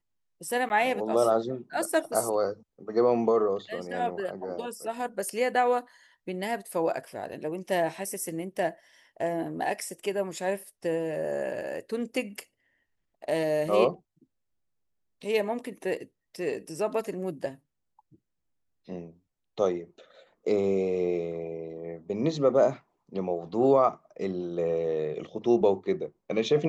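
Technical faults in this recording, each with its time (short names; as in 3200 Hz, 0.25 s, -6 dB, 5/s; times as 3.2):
0.69–0.7 gap 9.9 ms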